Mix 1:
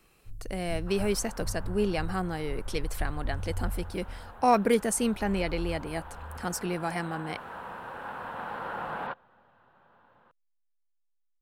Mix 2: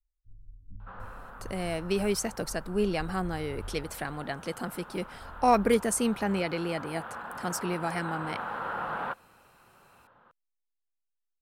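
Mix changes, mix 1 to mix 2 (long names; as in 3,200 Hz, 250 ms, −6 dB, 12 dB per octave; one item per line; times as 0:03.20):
speech: entry +1.00 s
first sound −9.0 dB
second sound: add parametric band 1,300 Hz +5.5 dB 0.36 octaves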